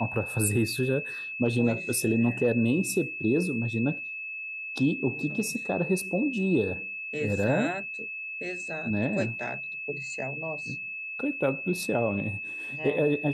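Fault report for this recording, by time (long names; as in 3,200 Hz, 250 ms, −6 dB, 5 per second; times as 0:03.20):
whistle 2,600 Hz −34 dBFS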